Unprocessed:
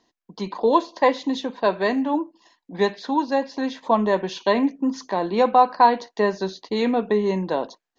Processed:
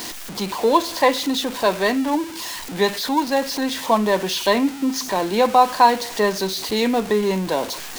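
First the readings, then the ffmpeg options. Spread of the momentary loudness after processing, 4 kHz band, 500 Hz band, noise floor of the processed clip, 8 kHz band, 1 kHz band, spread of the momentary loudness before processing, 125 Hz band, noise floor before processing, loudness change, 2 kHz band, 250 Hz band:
8 LU, +10.0 dB, +1.5 dB, −33 dBFS, can't be measured, +1.5 dB, 10 LU, +2.0 dB, −82 dBFS, +2.0 dB, +4.5 dB, +1.5 dB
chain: -af "aeval=exprs='val(0)+0.5*0.0335*sgn(val(0))':channel_layout=same,highshelf=frequency=2300:gain=8"

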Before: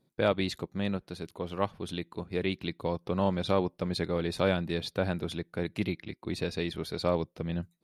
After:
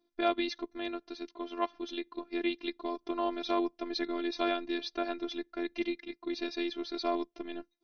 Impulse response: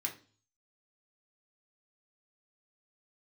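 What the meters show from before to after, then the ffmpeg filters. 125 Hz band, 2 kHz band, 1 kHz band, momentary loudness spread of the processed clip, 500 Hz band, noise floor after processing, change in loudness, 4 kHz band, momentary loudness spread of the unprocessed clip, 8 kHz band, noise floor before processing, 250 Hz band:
below −30 dB, −2.5 dB, +0.5 dB, 8 LU, −4.5 dB, −77 dBFS, −3.0 dB, −1.0 dB, 9 LU, can't be measured, −73 dBFS, −2.0 dB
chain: -af "afftfilt=real='re*between(b*sr/4096,130,6400)':imag='im*between(b*sr/4096,130,6400)':win_size=4096:overlap=0.75,afftfilt=real='hypot(re,im)*cos(PI*b)':imag='0':win_size=512:overlap=0.75,volume=2dB"

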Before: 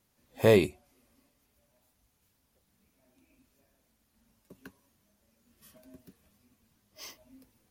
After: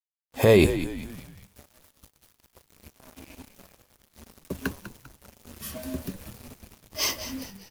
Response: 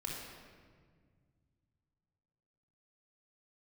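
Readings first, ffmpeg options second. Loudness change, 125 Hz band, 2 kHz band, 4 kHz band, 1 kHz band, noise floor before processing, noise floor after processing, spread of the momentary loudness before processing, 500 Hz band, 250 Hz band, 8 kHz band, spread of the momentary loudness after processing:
−1.0 dB, +7.0 dB, +6.5 dB, +10.0 dB, +5.5 dB, −74 dBFS, −72 dBFS, 9 LU, +4.5 dB, +7.0 dB, +15.0 dB, 25 LU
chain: -filter_complex "[0:a]equalizer=frequency=76:width_type=o:width=0.38:gain=10,dynaudnorm=framelen=130:gausssize=5:maxgain=13.5dB,acrusher=bits=7:mix=0:aa=0.5,alimiter=limit=-13.5dB:level=0:latency=1,asplit=5[link_01][link_02][link_03][link_04][link_05];[link_02]adelay=198,afreqshift=-69,volume=-12dB[link_06];[link_03]adelay=396,afreqshift=-138,volume=-19.3dB[link_07];[link_04]adelay=594,afreqshift=-207,volume=-26.7dB[link_08];[link_05]adelay=792,afreqshift=-276,volume=-34dB[link_09];[link_01][link_06][link_07][link_08][link_09]amix=inputs=5:normalize=0,volume=6dB"

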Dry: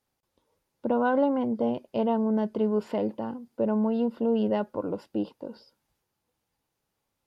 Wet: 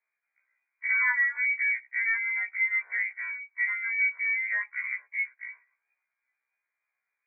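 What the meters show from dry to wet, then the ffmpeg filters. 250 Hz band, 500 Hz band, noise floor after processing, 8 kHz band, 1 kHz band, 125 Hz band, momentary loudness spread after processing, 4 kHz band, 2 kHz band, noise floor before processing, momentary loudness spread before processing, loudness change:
below −40 dB, below −35 dB, below −85 dBFS, can't be measured, −12.5 dB, below −40 dB, 10 LU, below −30 dB, +19.5 dB, −82 dBFS, 12 LU, +1.0 dB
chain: -af "lowpass=frequency=2100:width_type=q:width=0.5098,lowpass=frequency=2100:width_type=q:width=0.6013,lowpass=frequency=2100:width_type=q:width=0.9,lowpass=frequency=2100:width_type=q:width=2.563,afreqshift=-2500,highpass=640,afftfilt=real='re*1.73*eq(mod(b,3),0)':imag='im*1.73*eq(mod(b,3),0)':win_size=2048:overlap=0.75"

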